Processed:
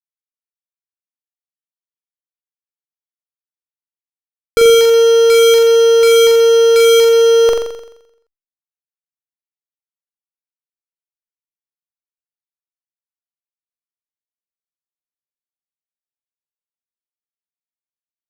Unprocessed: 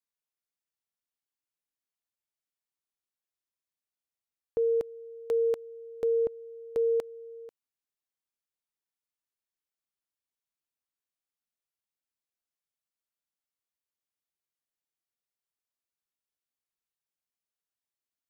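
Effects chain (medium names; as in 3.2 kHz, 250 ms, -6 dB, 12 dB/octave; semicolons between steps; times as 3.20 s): fuzz box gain 52 dB, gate -57 dBFS; reverse; upward compressor, threshold -25 dBFS; reverse; flutter echo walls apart 7.4 m, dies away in 0.81 s; trim +4 dB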